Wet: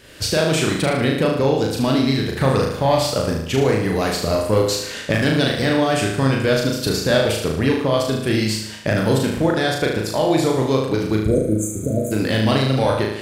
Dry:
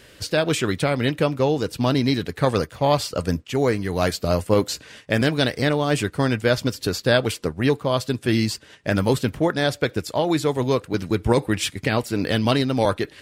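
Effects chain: recorder AGC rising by 28 dB/s; saturation -7 dBFS, distortion -25 dB; spectral replace 11.26–12.09 s, 690–6100 Hz before; flutter echo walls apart 6.4 m, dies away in 0.76 s

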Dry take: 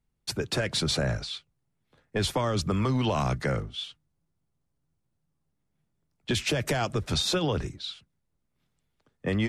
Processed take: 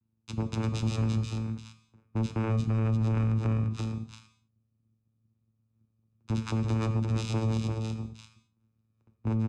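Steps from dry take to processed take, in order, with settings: bass shelf 440 Hz +5 dB; hum notches 60/120/180/240 Hz; vocoder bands 4, saw 111 Hz; peak limiter -23 dBFS, peak gain reduction 11 dB; comb 0.8 ms, depth 55%; delay 344 ms -5 dB; gated-style reverb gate 240 ms falling, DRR 8.5 dB

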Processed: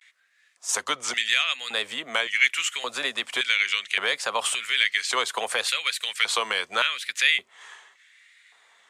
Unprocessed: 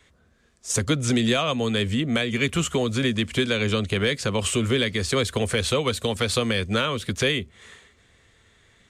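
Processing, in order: vibrato 0.74 Hz 90 cents; LFO high-pass square 0.88 Hz 860–2000 Hz

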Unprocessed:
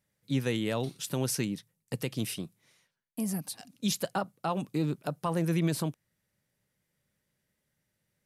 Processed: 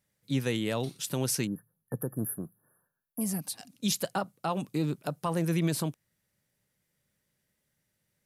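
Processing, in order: 1.47–3.21 s: spectral selection erased 1.8–9.9 kHz; treble shelf 4.4 kHz +3 dB, from 2.02 s +8 dB, from 3.28 s +3.5 dB

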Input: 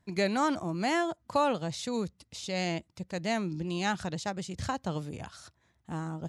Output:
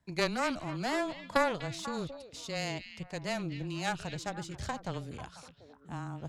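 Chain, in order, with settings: Chebyshev shaper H 2 -6 dB, 3 -13 dB, 5 -24 dB, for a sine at -14.5 dBFS; repeats whose band climbs or falls 246 ms, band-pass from 2.9 kHz, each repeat -1.4 oct, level -7.5 dB; frequency shift -15 Hz

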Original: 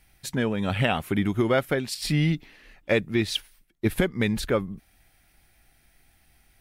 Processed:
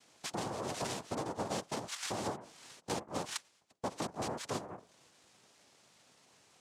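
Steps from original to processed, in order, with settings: hum notches 50/100/150 Hz; noise-vocoded speech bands 2; compression 3:1, threshold -40 dBFS, peak gain reduction 17 dB

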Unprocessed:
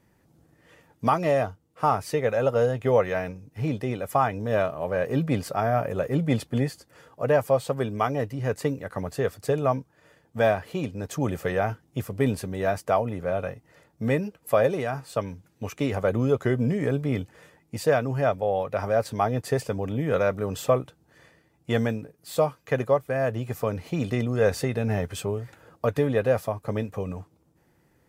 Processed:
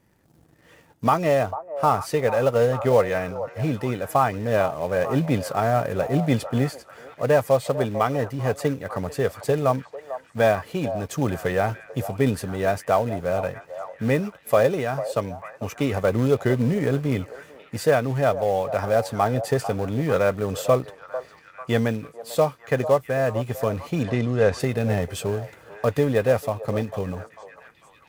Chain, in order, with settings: in parallel at -9.5 dB: companded quantiser 4-bit; 24.03–24.60 s: on the sum: distance through air 68 m; repeats whose band climbs or falls 446 ms, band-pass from 720 Hz, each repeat 0.7 oct, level -9.5 dB

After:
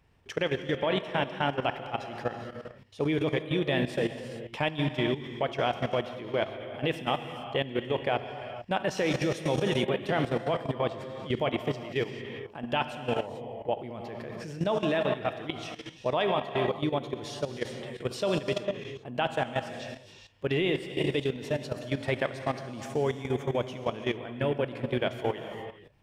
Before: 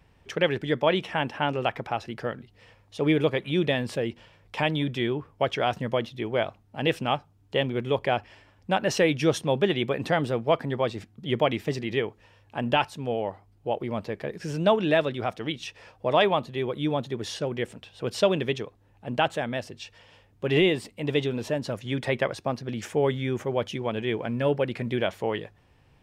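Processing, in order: gated-style reverb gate 470 ms flat, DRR 4 dB; level held to a coarse grid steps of 13 dB

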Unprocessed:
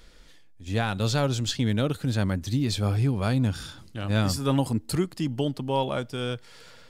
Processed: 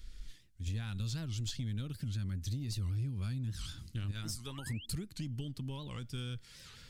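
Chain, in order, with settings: recorder AGC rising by 11 dB/s; 4.47–4.86 s: painted sound rise 800–3500 Hz -37 dBFS; bass shelf 61 Hz +10 dB; 4.11–4.67 s: harmonic-percussive split harmonic -15 dB; compression 6:1, threshold -28 dBFS, peak gain reduction 10 dB; amplifier tone stack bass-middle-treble 6-0-2; saturation -37.5 dBFS, distortion -23 dB; warped record 78 rpm, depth 250 cents; trim +10 dB

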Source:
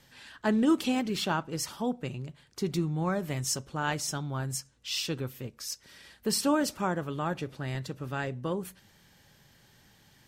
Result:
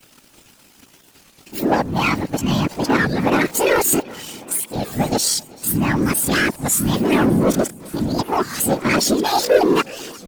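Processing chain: reverse the whole clip; comb 5.8 ms, depth 96%; in parallel at -1 dB: compression 12:1, threshold -39 dBFS, peak gain reduction 24.5 dB; on the sum: waveshaping leveller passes 3; word length cut 8-bit, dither none; pitch shift +8 st; whisper effect; on a send: multi-head delay 384 ms, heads first and third, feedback 52%, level -23.5 dB; on the sum: warped record 33 1/3 rpm, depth 250 cents

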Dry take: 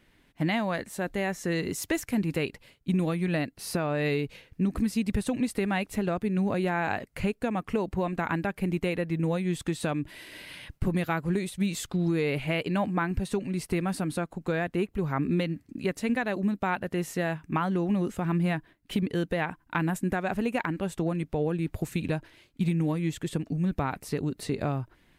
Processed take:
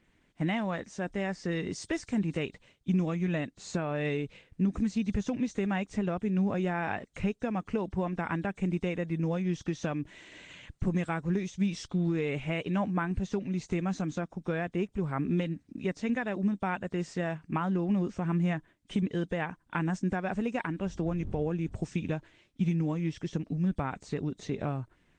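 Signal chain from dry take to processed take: knee-point frequency compression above 3.1 kHz 1.5:1; 20.80–21.85 s: wind noise 81 Hz -37 dBFS; peaking EQ 190 Hz +3 dB 0.39 oct; trim -3.5 dB; Opus 20 kbps 48 kHz

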